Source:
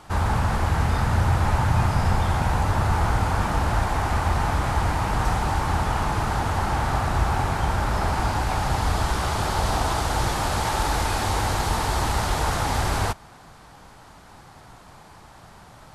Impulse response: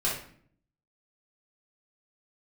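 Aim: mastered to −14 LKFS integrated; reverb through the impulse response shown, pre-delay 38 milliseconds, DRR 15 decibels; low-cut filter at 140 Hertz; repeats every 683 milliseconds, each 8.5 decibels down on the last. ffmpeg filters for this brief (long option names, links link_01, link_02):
-filter_complex "[0:a]highpass=140,aecho=1:1:683|1366|2049|2732:0.376|0.143|0.0543|0.0206,asplit=2[link_01][link_02];[1:a]atrim=start_sample=2205,adelay=38[link_03];[link_02][link_03]afir=irnorm=-1:irlink=0,volume=-23.5dB[link_04];[link_01][link_04]amix=inputs=2:normalize=0,volume=11dB"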